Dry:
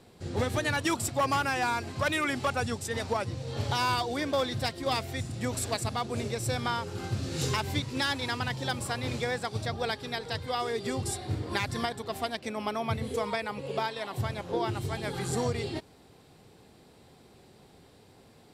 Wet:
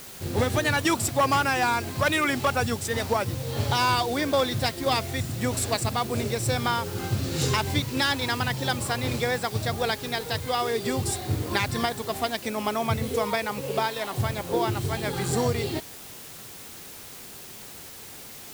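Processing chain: word length cut 8-bit, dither triangular; trim +5 dB

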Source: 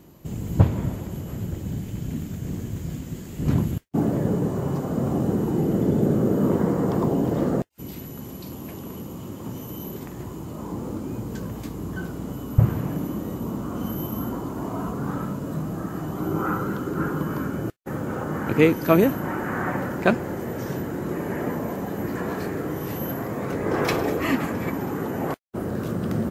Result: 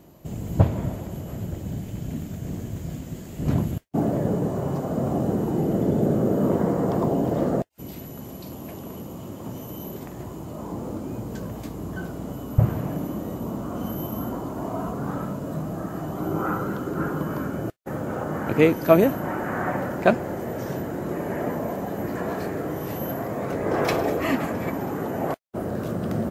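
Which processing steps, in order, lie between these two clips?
peaking EQ 650 Hz +7 dB 0.55 oct; trim -1.5 dB

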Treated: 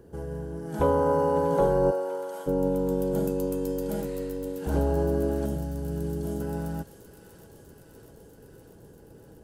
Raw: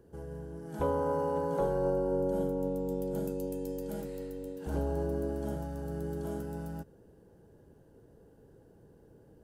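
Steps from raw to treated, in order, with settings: 1.90–2.46 s: high-pass 550 Hz -> 1.2 kHz 12 dB/octave; 5.46–6.41 s: peaking EQ 1.2 kHz -10 dB 2.4 oct; feedback echo behind a high-pass 644 ms, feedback 74%, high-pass 1.8 kHz, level -9.5 dB; trim +7.5 dB

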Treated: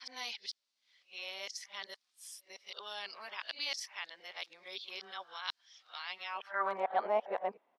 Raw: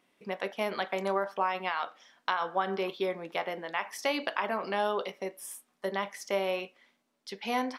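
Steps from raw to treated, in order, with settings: reverse the whole clip; resampled via 32 kHz; band-pass sweep 4.6 kHz -> 770 Hz, 6.23–6.87 s; trim +5 dB

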